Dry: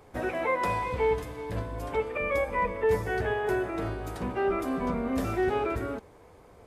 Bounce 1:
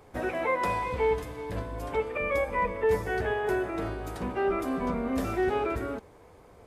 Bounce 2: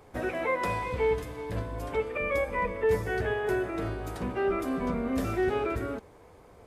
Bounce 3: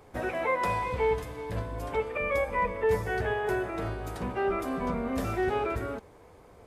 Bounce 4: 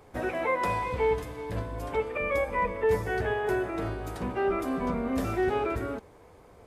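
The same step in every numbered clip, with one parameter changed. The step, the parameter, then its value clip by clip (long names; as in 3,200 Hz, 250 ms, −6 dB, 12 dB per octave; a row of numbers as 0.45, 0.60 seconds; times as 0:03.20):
dynamic equaliser, frequency: 120, 870, 300, 4,700 Hertz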